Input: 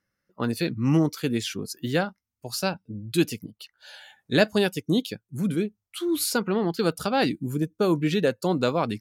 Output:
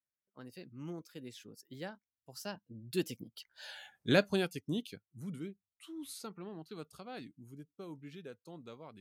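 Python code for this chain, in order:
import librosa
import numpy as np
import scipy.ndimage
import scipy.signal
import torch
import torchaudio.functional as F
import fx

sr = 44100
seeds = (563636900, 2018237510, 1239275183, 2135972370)

y = fx.doppler_pass(x, sr, speed_mps=23, closest_m=6.8, pass_at_s=3.74)
y = y * librosa.db_to_amplitude(-2.5)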